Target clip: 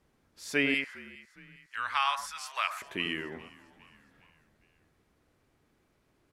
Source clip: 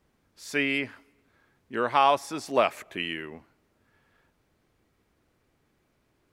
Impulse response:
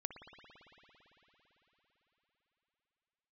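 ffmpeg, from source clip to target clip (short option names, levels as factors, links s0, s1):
-filter_complex "[0:a]asettb=1/sr,asplit=3[s0][s1][s2];[s0]atrim=end=0.744[s3];[s1]atrim=start=0.74:end=2.82,asetpts=PTS-STARTPTS,afade=t=in:d=0.004:c=qsin,afade=t=out:st=2.076:d=0.004:c=qsin,highpass=f=1200:w=0.5412,highpass=f=1200:w=1.3066[s4];[s2]atrim=start=2.816[s5];[s3][s4]acrossfade=d=0.004:c1=hsin:c2=qsin[s6];[s6][s5]acrossfade=d=0.004:c1=qsin:c2=hsin,asplit=5[s7][s8][s9][s10][s11];[s8]adelay=409,afreqshift=-57,volume=0.0891[s12];[s9]adelay=818,afreqshift=-114,volume=0.0462[s13];[s10]adelay=1227,afreqshift=-171,volume=0.024[s14];[s11]adelay=1636,afreqshift=-228,volume=0.0126[s15];[s7][s12][s13][s14][s15]amix=inputs=5:normalize=0[s16];[1:a]atrim=start_sample=2205,atrim=end_sample=3969,asetrate=25137,aresample=44100[s17];[s16][s17]afir=irnorm=-1:irlink=0"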